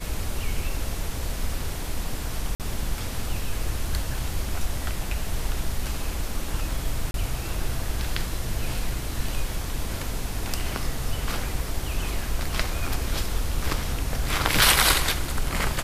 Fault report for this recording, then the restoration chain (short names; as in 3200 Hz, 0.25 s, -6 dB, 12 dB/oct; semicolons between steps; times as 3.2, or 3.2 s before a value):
2.55–2.6 gap 48 ms
7.11–7.14 gap 32 ms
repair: interpolate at 2.55, 48 ms; interpolate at 7.11, 32 ms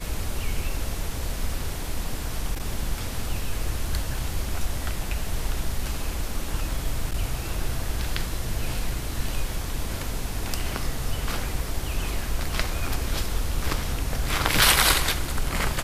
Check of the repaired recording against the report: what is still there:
none